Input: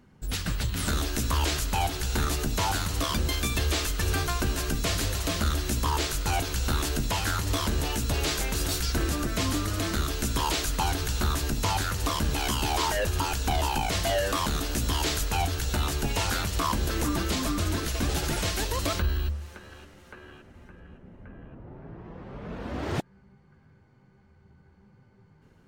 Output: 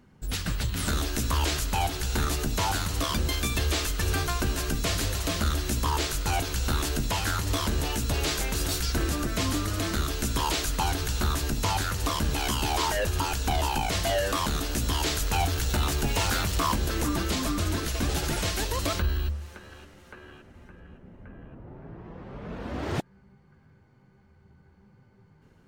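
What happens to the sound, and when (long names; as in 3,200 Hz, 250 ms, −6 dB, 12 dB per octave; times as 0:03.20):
0:15.25–0:16.76: converter with a step at zero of −34 dBFS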